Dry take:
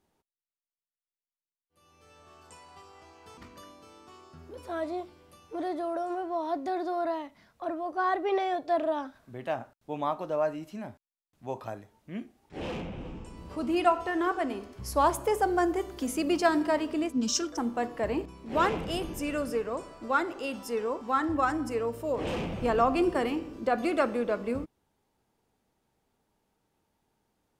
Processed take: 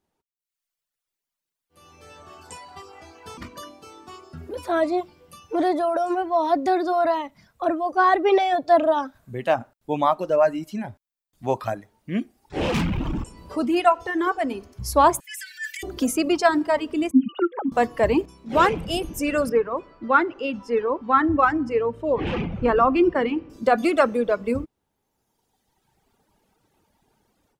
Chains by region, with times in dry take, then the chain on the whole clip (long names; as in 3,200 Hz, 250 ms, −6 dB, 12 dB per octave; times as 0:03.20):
0:12.74–0:13.24: flat-topped bell 520 Hz −10.5 dB 1.1 octaves + leveller curve on the samples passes 3 + double-tracking delay 46 ms −12 dB
0:15.20–0:15.83: Chebyshev high-pass filter 1,700 Hz, order 6 + comb filter 4 ms, depth 93% + transient designer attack −10 dB, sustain +7 dB
0:17.11–0:17.72: three sine waves on the formant tracks + high-frequency loss of the air 140 metres
0:19.49–0:23.50: low-pass filter 2,700 Hz + parametric band 690 Hz −5 dB 0.38 octaves
whole clip: automatic gain control gain up to 16 dB; reverb reduction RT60 1.8 s; level −3.5 dB